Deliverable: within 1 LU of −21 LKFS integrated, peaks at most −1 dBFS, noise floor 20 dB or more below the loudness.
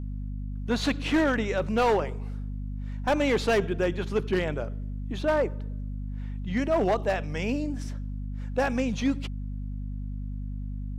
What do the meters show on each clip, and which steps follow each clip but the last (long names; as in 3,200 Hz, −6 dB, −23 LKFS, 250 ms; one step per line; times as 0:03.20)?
share of clipped samples 1.2%; peaks flattened at −18.0 dBFS; mains hum 50 Hz; hum harmonics up to 250 Hz; level of the hum −31 dBFS; integrated loudness −29.0 LKFS; sample peak −18.0 dBFS; target loudness −21.0 LKFS
→ clipped peaks rebuilt −18 dBFS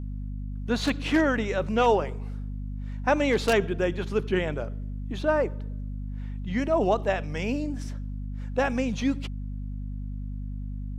share of clipped samples 0.0%; mains hum 50 Hz; hum harmonics up to 250 Hz; level of the hum −31 dBFS
→ hum removal 50 Hz, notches 5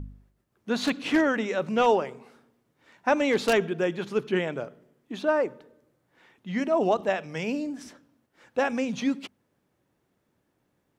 mains hum none found; integrated loudness −26.5 LKFS; sample peak −8.5 dBFS; target loudness −21.0 LKFS
→ level +5.5 dB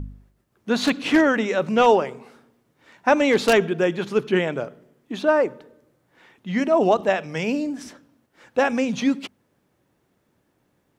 integrated loudness −21.5 LKFS; sample peak −3.0 dBFS; background noise floor −68 dBFS